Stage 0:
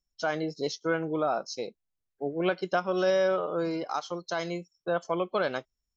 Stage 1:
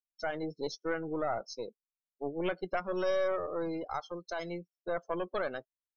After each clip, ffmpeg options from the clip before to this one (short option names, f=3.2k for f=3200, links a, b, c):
-af "aeval=exprs='(tanh(11.2*val(0)+0.55)-tanh(0.55))/11.2':c=same,afftdn=nr=26:nf=-41,volume=-2dB"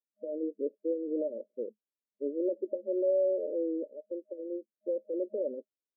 -af "afftfilt=real='re*between(b*sr/4096,210,620)':imag='im*between(b*sr/4096,210,620)':win_size=4096:overlap=0.75,volume=3.5dB"